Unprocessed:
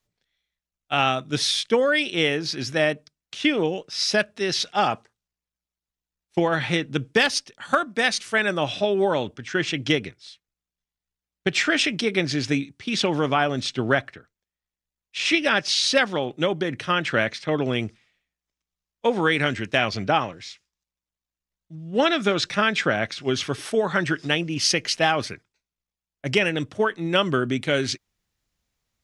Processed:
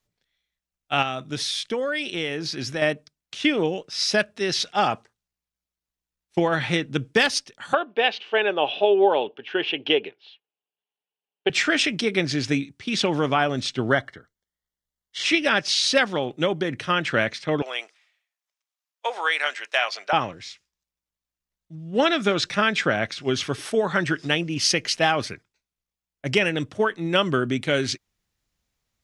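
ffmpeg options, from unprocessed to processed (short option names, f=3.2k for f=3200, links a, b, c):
-filter_complex "[0:a]asettb=1/sr,asplit=3[a][b][c];[a]atrim=end=1.024[d];[b]atrim=start=1.02:end=2.82,asetpts=PTS-STARTPTS,afade=t=in:d=0.004:c=qsin,afade=t=out:st=1.796:d=0.004:c=qsin,acompressor=threshold=-25dB:ratio=2.5:attack=3.2:release=140:knee=1:detection=peak[e];[c]atrim=start=2.816[f];[d][e]acrossfade=d=0.004:c1=hsin:c2=qsin[g];[g][f]acrossfade=d=0.004:c1=qsin:c2=hsin,asettb=1/sr,asplit=3[h][i][j];[h]atrim=end=7.734[k];[i]atrim=start=7.73:end=11.5,asetpts=PTS-STARTPTS,afade=t=in:d=0.004:c=qsin,afade=t=out:st=3.766:d=0.004:c=qsin,highpass=390,equalizer=f=420:t=q:w=4:g=9,equalizer=f=820:t=q:w=4:g=7,equalizer=f=1.3k:t=q:w=4:g=-6,equalizer=f=2k:t=q:w=4:g=-7,equalizer=f=2.9k:t=q:w=4:g=9,lowpass=f=3.3k:w=0.5412,lowpass=f=3.3k:w=1.3066[l];[j]atrim=start=11.496[m];[k][l]acrossfade=d=0.004:c1=hsin:c2=qsin[n];[n][m]acrossfade=d=0.004:c1=qsin:c2=hsin,asettb=1/sr,asplit=3[o][p][q];[o]atrim=end=13.874[r];[p]atrim=start=13.87:end=15.24,asetpts=PTS-STARTPTS,afade=t=in:d=0.004:c=qsin,afade=t=out:st=1.366:d=0.004:c=qsin,asuperstop=centerf=2500:order=8:qfactor=4.6[s];[q]atrim=start=15.236[t];[r][s]acrossfade=d=0.004:c1=hsin:c2=qsin[u];[u][t]acrossfade=d=0.004:c1=qsin:c2=hsin,asettb=1/sr,asplit=3[v][w][x];[v]atrim=end=17.624[y];[w]atrim=start=17.62:end=20.13,asetpts=PTS-STARTPTS,afade=t=in:d=0.004:c=qsin,afade=t=out:st=2.506:d=0.004:c=qsin,highpass=f=630:w=0.5412,highpass=f=630:w=1.3066[z];[x]atrim=start=20.126[aa];[y][z]acrossfade=d=0.004:c1=hsin:c2=qsin[ab];[ab][aa]acrossfade=d=0.004:c1=qsin:c2=hsin"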